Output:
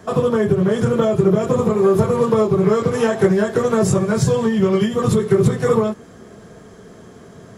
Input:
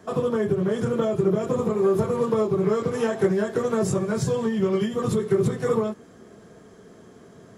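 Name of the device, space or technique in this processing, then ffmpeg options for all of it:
low shelf boost with a cut just above: -af "lowshelf=f=100:g=5,equalizer=f=310:t=o:w=1:g=-3,volume=7.5dB"

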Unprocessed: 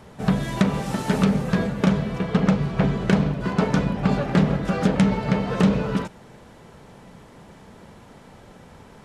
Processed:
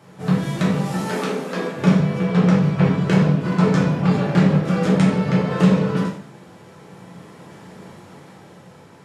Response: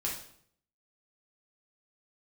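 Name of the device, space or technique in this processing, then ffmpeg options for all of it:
far laptop microphone: -filter_complex "[0:a]asettb=1/sr,asplit=3[a][b][c];[a]atrim=end=1.044[d];[b]atrim=start=1.04:end=1.75,asetpts=PTS-STARTPTS,afade=t=in:d=0.004:c=qsin,afade=t=out:st=0.706:d=0.004:c=qsin,highpass=f=260:w=0.5412,highpass=f=260:w=1.3066[e];[c]atrim=start=1.746[f];[d][e]acrossfade=d=0.004:c1=hsin:c2=qsin[g];[g][f]acrossfade=d=0.004:c1=qsin:c2=hsin[h];[1:a]atrim=start_sample=2205[i];[h][i]afir=irnorm=-1:irlink=0,highpass=f=110:w=0.5412,highpass=f=110:w=1.3066,dynaudnorm=f=300:g=9:m=6dB,volume=-2.5dB"

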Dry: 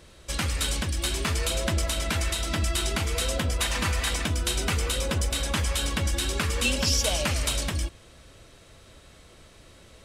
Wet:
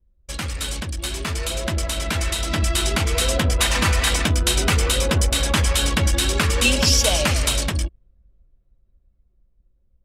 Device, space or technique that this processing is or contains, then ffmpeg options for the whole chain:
voice memo with heavy noise removal: -af "anlmdn=6.31,dynaudnorm=f=380:g=13:m=8.5dB"

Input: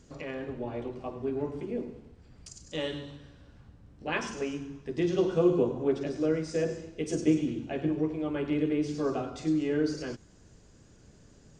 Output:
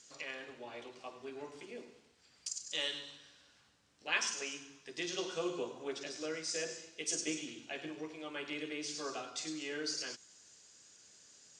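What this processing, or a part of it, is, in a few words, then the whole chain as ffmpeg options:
piezo pickup straight into a mixer: -af "lowpass=7.2k,aderivative,volume=11dB"

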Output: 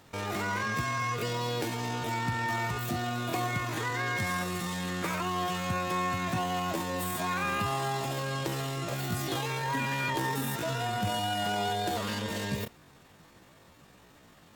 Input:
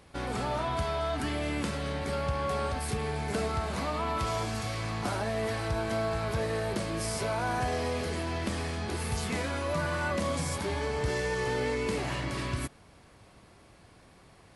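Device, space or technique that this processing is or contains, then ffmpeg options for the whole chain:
chipmunk voice: -af "asetrate=72056,aresample=44100,atempo=0.612027"

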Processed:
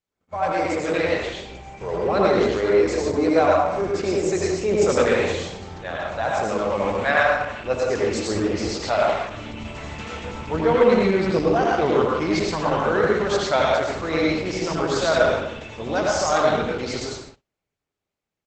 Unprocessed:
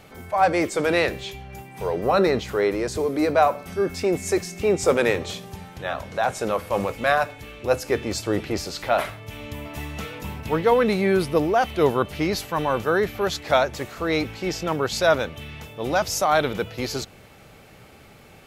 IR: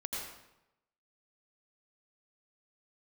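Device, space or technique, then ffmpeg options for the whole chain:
speakerphone in a meeting room: -filter_complex "[0:a]asplit=3[a][b][c];[a]afade=t=out:st=6.7:d=0.02[d];[b]adynamicequalizer=threshold=0.02:dfrequency=1900:dqfactor=1.1:tfrequency=1900:tqfactor=1.1:attack=5:release=100:ratio=0.375:range=2.5:mode=boostabove:tftype=bell,afade=t=in:st=6.7:d=0.02,afade=t=out:st=7.62:d=0.02[e];[c]afade=t=in:st=7.62:d=0.02[f];[d][e][f]amix=inputs=3:normalize=0[g];[1:a]atrim=start_sample=2205[h];[g][h]afir=irnorm=-1:irlink=0,asplit=2[i][j];[j]adelay=130,highpass=300,lowpass=3.4k,asoftclip=type=hard:threshold=-12.5dB,volume=-26dB[k];[i][k]amix=inputs=2:normalize=0,dynaudnorm=f=490:g=7:m=9.5dB,agate=range=-37dB:threshold=-36dB:ratio=16:detection=peak,volume=-3dB" -ar 48000 -c:a libopus -b:a 12k

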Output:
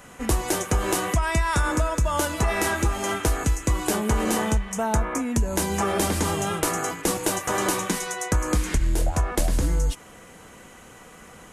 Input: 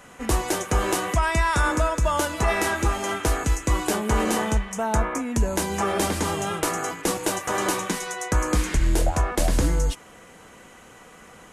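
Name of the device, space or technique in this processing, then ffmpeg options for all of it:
ASMR close-microphone chain: -af "lowshelf=f=210:g=4.5,acompressor=threshold=-18dB:ratio=6,highshelf=f=8.2k:g=5.5"

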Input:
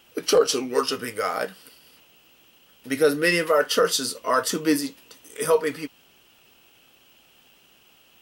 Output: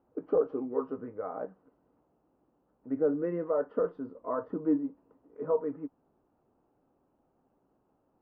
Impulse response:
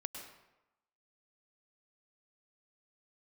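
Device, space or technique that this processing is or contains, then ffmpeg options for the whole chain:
under water: -af "lowpass=f=1k:w=0.5412,lowpass=f=1k:w=1.3066,equalizer=f=280:t=o:w=0.36:g=5,volume=-8.5dB"

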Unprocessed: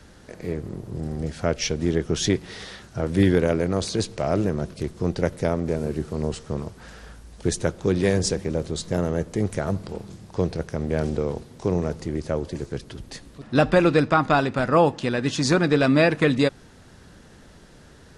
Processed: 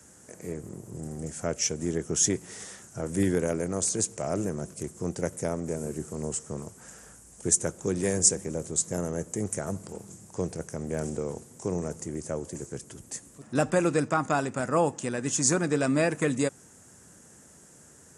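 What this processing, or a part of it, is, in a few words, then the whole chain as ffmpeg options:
budget condenser microphone: -af "highpass=100,highshelf=f=5.5k:t=q:w=3:g=11,volume=-6.5dB"

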